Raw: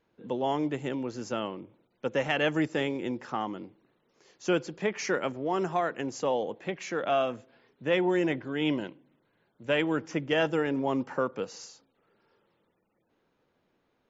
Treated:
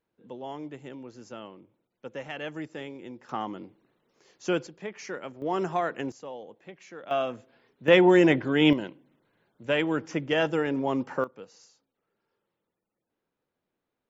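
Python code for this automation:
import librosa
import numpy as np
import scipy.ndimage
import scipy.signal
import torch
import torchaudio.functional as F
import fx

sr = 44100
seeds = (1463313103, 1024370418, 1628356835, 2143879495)

y = fx.gain(x, sr, db=fx.steps((0.0, -9.5), (3.29, -0.5), (4.67, -8.0), (5.42, 0.5), (6.12, -12.0), (7.11, -1.0), (7.88, 8.0), (8.73, 1.0), (11.24, -11.0)))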